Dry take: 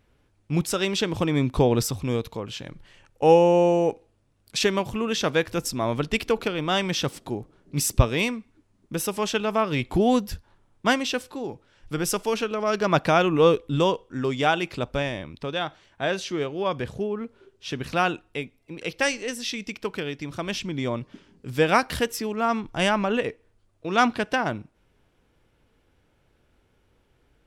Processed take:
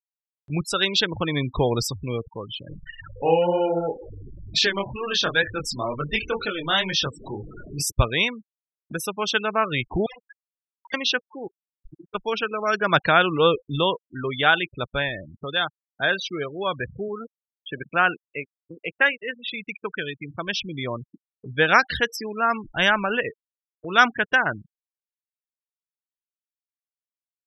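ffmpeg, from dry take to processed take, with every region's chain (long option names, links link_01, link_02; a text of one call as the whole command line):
ffmpeg -i in.wav -filter_complex "[0:a]asettb=1/sr,asplit=3[link_01][link_02][link_03];[link_01]atrim=end=2.684[link_04];[link_02]atrim=start=2.68:end=7.87,asetpts=PTS-STARTPTS,afade=type=in:duration=0.004:curve=qsin,afade=type=out:start_time=5.186:duration=0.004:curve=qsin,aeval=exprs='val(0)+0.5*0.0355*sgn(val(0))':channel_layout=same,flanger=delay=19.5:depth=5.6:speed=2.1[link_05];[link_03]atrim=start=7.866[link_06];[link_04][link_05]acrossfade=duration=0.004:curve1=hsin:curve2=qsin[link_07];[link_07][link_06]acrossfade=duration=0.004:curve1=qsin:curve2=hsin,asettb=1/sr,asplit=3[link_08][link_09][link_10];[link_08]atrim=end=10.064[link_11];[link_09]atrim=start=10.06:end=10.94,asetpts=PTS-STARTPTS,afade=type=in:duration=0.004:curve=qsin,afade=type=out:start_time=0.876:duration=0.004:curve=qsin,acompressor=threshold=-23dB:ratio=2.5:attack=3.2:release=140:knee=1:detection=peak,highpass=790,lowpass=3500,aeval=exprs='(mod(42.2*val(0)+1,2)-1)/42.2':channel_layout=same[link_12];[link_10]atrim=start=10.936[link_13];[link_11][link_12]acrossfade=duration=0.004:curve1=hsin:curve2=qsin[link_14];[link_14][link_13]acrossfade=duration=0.004:curve1=qsin:curve2=hsin,asettb=1/sr,asplit=3[link_15][link_16][link_17];[link_15]atrim=end=11.474[link_18];[link_16]atrim=start=11.47:end=12.15,asetpts=PTS-STARTPTS,afade=type=in:duration=0.004:curve=qsin,afade=type=out:start_time=0.676:duration=0.004:curve=qsin,bandreject=frequency=50:width_type=h:width=6,bandreject=frequency=100:width_type=h:width=6,bandreject=frequency=150:width_type=h:width=6,acompressor=threshold=-39dB:ratio=6:attack=3.2:release=140:knee=1:detection=peak,tremolo=f=28:d=0.919[link_19];[link_17]atrim=start=12.146[link_20];[link_18][link_19]acrossfade=duration=0.004:curve1=hsin:curve2=qsin[link_21];[link_21][link_20]acrossfade=duration=0.004:curve1=qsin:curve2=hsin,asettb=1/sr,asplit=3[link_22][link_23][link_24];[link_22]atrim=end=17.084[link_25];[link_23]atrim=start=17.08:end=19.54,asetpts=PTS-STARTPTS,afade=type=in:duration=0.004:curve=qsin,afade=type=out:start_time=2.456:duration=0.004:curve=qsin,aeval=exprs='val(0)*gte(abs(val(0)),0.0168)':channel_layout=same,highpass=140,lowpass=3000[link_26];[link_24]atrim=start=19.536[link_27];[link_25][link_26]acrossfade=duration=0.004:curve1=hsin:curve2=qsin[link_28];[link_28][link_27]acrossfade=duration=0.004:curve1=qsin:curve2=hsin,afftfilt=real='re*gte(hypot(re,im),0.0398)':imag='im*gte(hypot(re,im),0.0398)':win_size=1024:overlap=0.75,equalizer=frequency=250:width_type=o:width=0.67:gain=-4,equalizer=frequency=1600:width_type=o:width=0.67:gain=11,equalizer=frequency=4000:width_type=o:width=0.67:gain=12,acompressor=mode=upward:threshold=-33dB:ratio=2.5,volume=-1.5dB" out.wav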